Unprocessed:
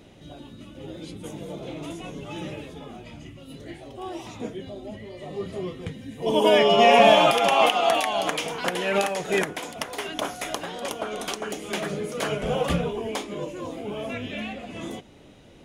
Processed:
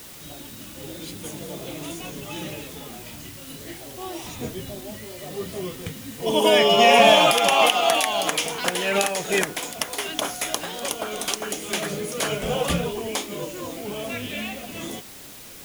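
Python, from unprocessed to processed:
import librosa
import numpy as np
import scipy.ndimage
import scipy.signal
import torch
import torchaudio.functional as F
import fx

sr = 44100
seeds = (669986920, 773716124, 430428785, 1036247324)

y = fx.octave_divider(x, sr, octaves=1, level_db=-1.0, at=(4.23, 4.81))
y = fx.high_shelf(y, sr, hz=3500.0, db=10.5)
y = fx.dmg_noise_colour(y, sr, seeds[0], colour='white', level_db=-43.0)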